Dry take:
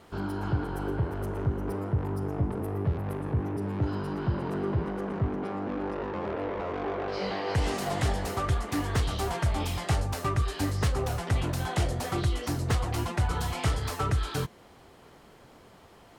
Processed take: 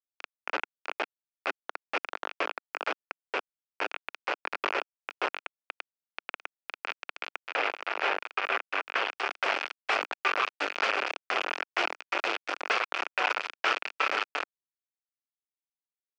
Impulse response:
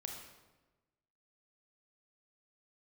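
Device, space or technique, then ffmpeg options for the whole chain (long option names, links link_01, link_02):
hand-held game console: -filter_complex "[0:a]acrusher=bits=3:mix=0:aa=0.000001,highpass=frequency=300:width=0.5412,highpass=frequency=300:width=1.3066,highpass=460,equalizer=frequency=1400:width_type=q:width=4:gain=6,equalizer=frequency=2500:width_type=q:width=4:gain=9,equalizer=frequency=3900:width_type=q:width=4:gain=-7,lowpass=frequency=4400:width=0.5412,lowpass=frequency=4400:width=1.3066,asettb=1/sr,asplit=3[link_01][link_02][link_03];[link_01]atrim=end=7.424[link_04];[link_02]atrim=start=7.42:end=9.1,asetpts=PTS-STARTPTS,afade=type=in:duration=0.004:curve=qsin,afade=type=out:start_time=1.676:duration=0.004:curve=qsin,bass=frequency=250:gain=-6,treble=frequency=4000:gain=-9[link_05];[link_03]atrim=start=9.096[link_06];[link_04][link_05]acrossfade=duration=0.004:curve1=hsin:curve2=qsin[link_07];[link_07][link_06]acrossfade=duration=0.004:curve1=qsin:curve2=hsin"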